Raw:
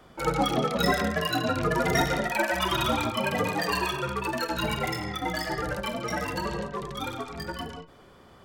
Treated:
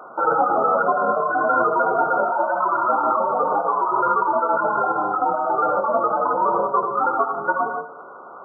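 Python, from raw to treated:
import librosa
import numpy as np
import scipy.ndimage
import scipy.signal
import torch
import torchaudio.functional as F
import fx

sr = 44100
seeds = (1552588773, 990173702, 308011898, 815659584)

p1 = scipy.signal.sosfilt(scipy.signal.butter(2, 670.0, 'highpass', fs=sr, output='sos'), x)
p2 = fx.over_compress(p1, sr, threshold_db=-35.0, ratio=-0.5)
p3 = p1 + (p2 * librosa.db_to_amplitude(2.0))
p4 = fx.brickwall_lowpass(p3, sr, high_hz=1500.0)
p5 = fx.echo_feedback(p4, sr, ms=78, feedback_pct=54, wet_db=-14.5)
y = p5 * librosa.db_to_amplitude(9.0)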